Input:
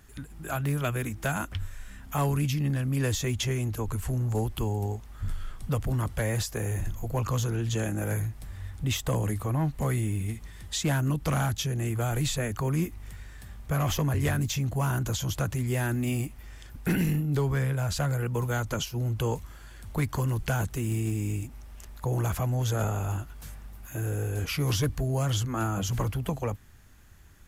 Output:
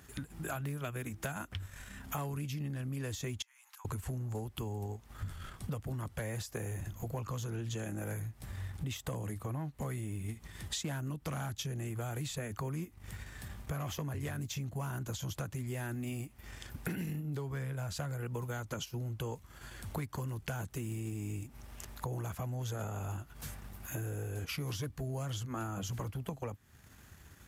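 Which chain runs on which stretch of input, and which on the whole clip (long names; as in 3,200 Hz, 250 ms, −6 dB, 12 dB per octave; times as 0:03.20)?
0:03.42–0:03.85: Chebyshev high-pass filter 900 Hz, order 5 + downward compressor 8 to 1, threshold −53 dBFS
whole clip: transient designer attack 0 dB, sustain −6 dB; high-pass filter 76 Hz; downward compressor 6 to 1, threshold −39 dBFS; level +2.5 dB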